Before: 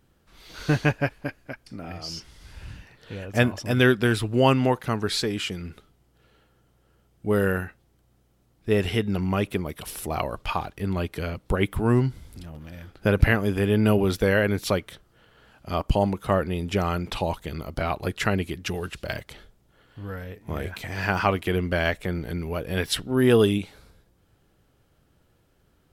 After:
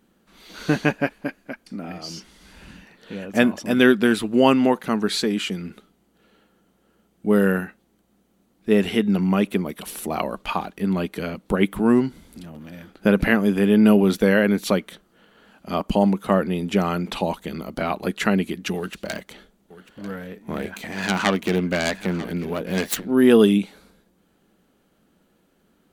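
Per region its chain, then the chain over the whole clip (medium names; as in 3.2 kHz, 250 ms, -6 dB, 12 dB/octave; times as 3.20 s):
18.76–23.11 s: self-modulated delay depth 0.33 ms + delay 943 ms -16.5 dB
whole clip: resonant low shelf 150 Hz -9 dB, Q 3; band-stop 5.2 kHz, Q 12; trim +2 dB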